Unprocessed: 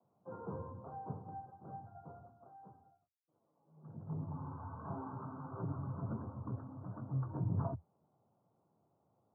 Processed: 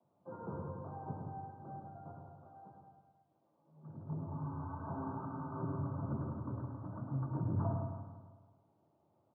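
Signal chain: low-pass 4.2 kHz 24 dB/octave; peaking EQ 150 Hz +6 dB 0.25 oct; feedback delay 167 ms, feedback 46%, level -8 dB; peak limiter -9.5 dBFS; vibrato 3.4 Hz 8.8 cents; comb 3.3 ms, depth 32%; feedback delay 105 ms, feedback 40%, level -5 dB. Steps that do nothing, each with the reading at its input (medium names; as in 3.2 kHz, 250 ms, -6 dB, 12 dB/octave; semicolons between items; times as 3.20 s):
low-pass 4.2 kHz: input has nothing above 1.4 kHz; peak limiter -9.5 dBFS: peak at its input -23.0 dBFS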